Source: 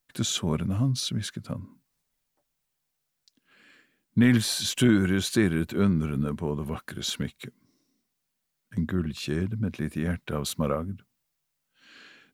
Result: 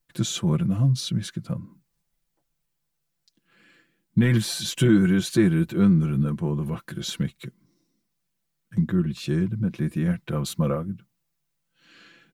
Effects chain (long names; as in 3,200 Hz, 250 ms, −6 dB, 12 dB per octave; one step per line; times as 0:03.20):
low-shelf EQ 290 Hz +8 dB
comb filter 5.9 ms, depth 70%
level −3 dB